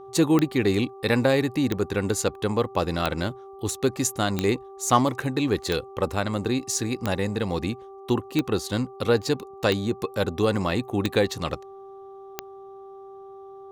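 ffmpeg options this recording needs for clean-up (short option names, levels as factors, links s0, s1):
-af "adeclick=t=4,bandreject=f=390.2:t=h:w=4,bandreject=f=780.4:t=h:w=4,bandreject=f=1170.6:t=h:w=4"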